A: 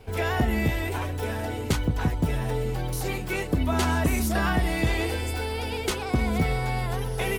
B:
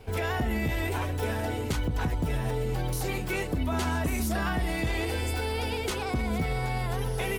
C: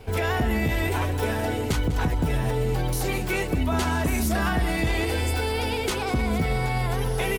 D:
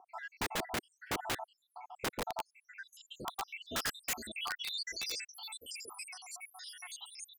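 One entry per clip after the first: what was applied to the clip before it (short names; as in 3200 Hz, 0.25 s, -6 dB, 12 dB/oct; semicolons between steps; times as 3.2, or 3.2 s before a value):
limiter -20.5 dBFS, peak gain reduction 6.5 dB
echo 0.198 s -14.5 dB; gain +4.5 dB
random spectral dropouts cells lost 85%; band-pass sweep 380 Hz -> 7200 Hz, 1.79–5.43; wrapped overs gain 37 dB; gain +8.5 dB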